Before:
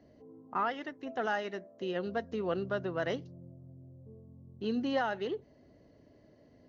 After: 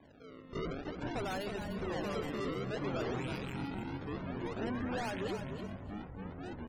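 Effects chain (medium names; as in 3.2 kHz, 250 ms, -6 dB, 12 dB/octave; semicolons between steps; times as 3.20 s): rattle on loud lows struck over -50 dBFS, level -36 dBFS; peaking EQ 3.4 kHz +12.5 dB 0.37 oct; decimation with a swept rate 31×, swing 160% 0.52 Hz; saturation -36 dBFS, distortion -7 dB; ever faster or slower copies 241 ms, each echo -6 st, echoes 2; spectral gate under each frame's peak -25 dB strong; on a send: feedback delay 299 ms, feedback 23%, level -8 dB; on the sum: warped record 33 1/3 rpm, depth 160 cents; trim +1 dB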